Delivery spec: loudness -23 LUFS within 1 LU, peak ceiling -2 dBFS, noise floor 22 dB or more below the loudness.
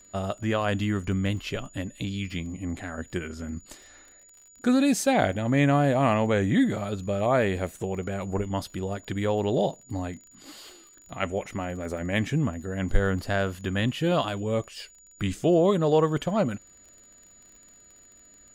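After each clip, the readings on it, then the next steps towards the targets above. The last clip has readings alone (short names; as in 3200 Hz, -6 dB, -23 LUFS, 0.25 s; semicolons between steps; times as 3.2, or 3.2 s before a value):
ticks 32/s; steady tone 6900 Hz; tone level -52 dBFS; loudness -26.5 LUFS; peak -6.0 dBFS; loudness target -23.0 LUFS
-> de-click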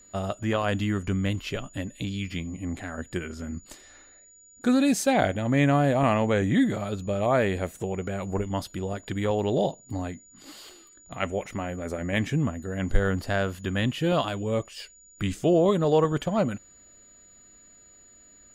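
ticks 0/s; steady tone 6900 Hz; tone level -52 dBFS
-> notch 6900 Hz, Q 30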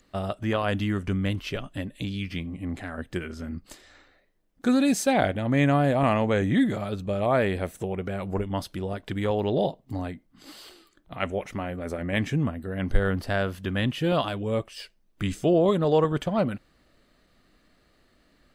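steady tone none; loudness -26.5 LUFS; peak -6.0 dBFS; loudness target -23.0 LUFS
-> gain +3.5 dB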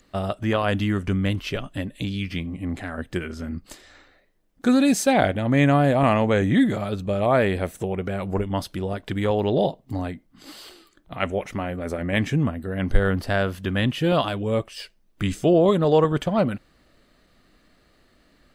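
loudness -23.0 LUFS; peak -2.5 dBFS; noise floor -61 dBFS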